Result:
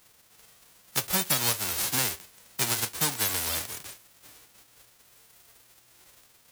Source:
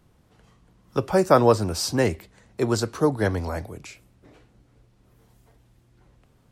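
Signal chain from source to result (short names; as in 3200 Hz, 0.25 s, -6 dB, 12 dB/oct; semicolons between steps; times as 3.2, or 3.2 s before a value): spectral whitening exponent 0.1; compressor 4:1, threshold -24 dBFS, peak gain reduction 11.5 dB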